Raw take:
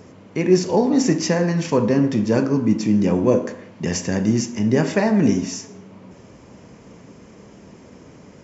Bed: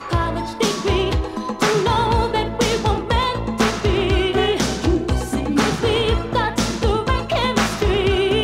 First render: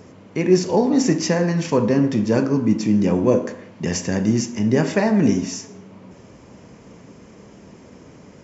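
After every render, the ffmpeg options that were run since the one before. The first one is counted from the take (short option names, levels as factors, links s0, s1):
-af anull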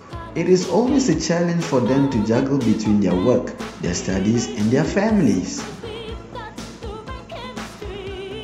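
-filter_complex "[1:a]volume=0.211[s0];[0:a][s0]amix=inputs=2:normalize=0"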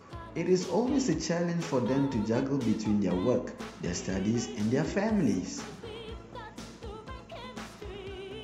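-af "volume=0.299"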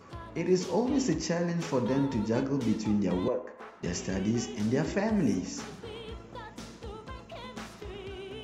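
-filter_complex "[0:a]asettb=1/sr,asplit=3[s0][s1][s2];[s0]atrim=end=3.284[s3];[s1]atrim=start=3.28:end=3.83,asetpts=PTS-STARTPTS,afade=t=in:d=0.004:c=qsin,afade=t=out:st=0.546:d=0.004:c=qsin,acrossover=split=390 2100:gain=0.112 1 0.141[s4][s5][s6];[s4][s5][s6]amix=inputs=3:normalize=0[s7];[s2]atrim=start=3.826[s8];[s3][s7]acrossfade=d=0.004:c1=hsin:c2=qsin[s9];[s9][s8]acrossfade=d=0.004:c1=qsin:c2=hsin"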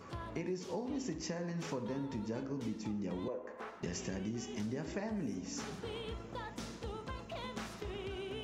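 -af "acompressor=threshold=0.0141:ratio=5"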